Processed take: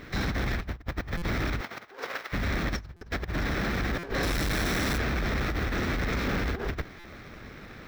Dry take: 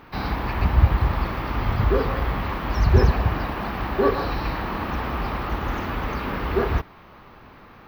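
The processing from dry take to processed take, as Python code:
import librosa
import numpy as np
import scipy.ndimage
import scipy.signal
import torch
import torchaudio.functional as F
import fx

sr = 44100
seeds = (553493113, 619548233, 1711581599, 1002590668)

y = fx.lower_of_two(x, sr, delay_ms=0.53)
y = fx.over_compress(y, sr, threshold_db=-27.0, ratio=-0.5)
y = fx.highpass(y, sr, hz=fx.line((1.6, 390.0), (2.32, 820.0)), slope=12, at=(1.6, 2.32), fade=0.02)
y = fx.quant_companded(y, sr, bits=2, at=(4.23, 4.98))
y = fx.peak_eq(y, sr, hz=12000.0, db=-2.5, octaves=2.2)
y = 10.0 ** (-23.0 / 20.0) * np.tanh(y / 10.0 ** (-23.0 / 20.0))
y = fx.peak_eq(y, sr, hz=5300.0, db=5.0, octaves=0.35)
y = fx.buffer_glitch(y, sr, at_s=(1.17, 2.96, 3.98, 6.99), block=256, repeats=8)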